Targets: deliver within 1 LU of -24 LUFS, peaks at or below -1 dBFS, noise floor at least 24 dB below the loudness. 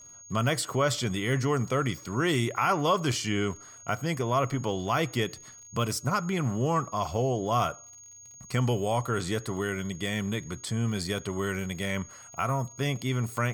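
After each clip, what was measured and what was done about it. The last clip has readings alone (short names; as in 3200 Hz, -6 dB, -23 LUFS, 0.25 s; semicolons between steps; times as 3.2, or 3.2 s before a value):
ticks 36/s; steady tone 6600 Hz; tone level -47 dBFS; loudness -29.0 LUFS; peak -14.0 dBFS; loudness target -24.0 LUFS
-> de-click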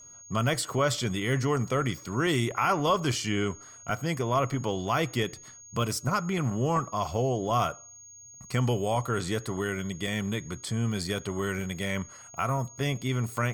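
ticks 0.30/s; steady tone 6600 Hz; tone level -47 dBFS
-> notch 6600 Hz, Q 30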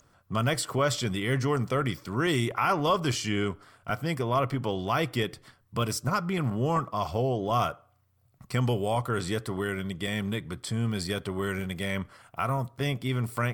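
steady tone none; loudness -29.0 LUFS; peak -14.0 dBFS; loudness target -24.0 LUFS
-> gain +5 dB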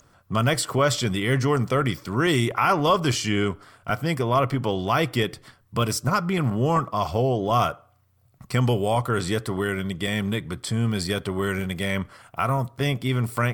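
loudness -24.0 LUFS; peak -9.0 dBFS; noise floor -60 dBFS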